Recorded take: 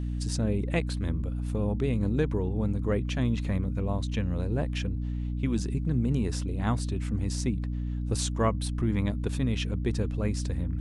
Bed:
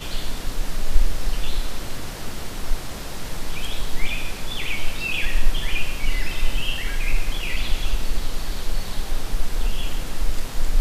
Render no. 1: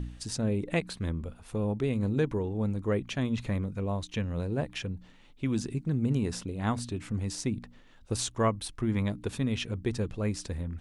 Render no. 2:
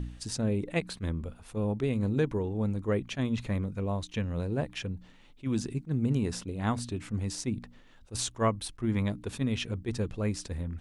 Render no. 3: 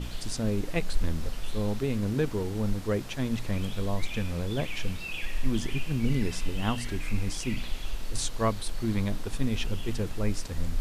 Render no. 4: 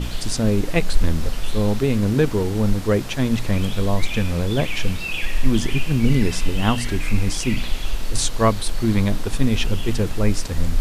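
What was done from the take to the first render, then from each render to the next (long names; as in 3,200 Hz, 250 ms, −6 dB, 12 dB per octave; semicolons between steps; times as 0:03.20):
hum removal 60 Hz, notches 5
level that may rise only so fast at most 390 dB per second
mix in bed −11 dB
level +9.5 dB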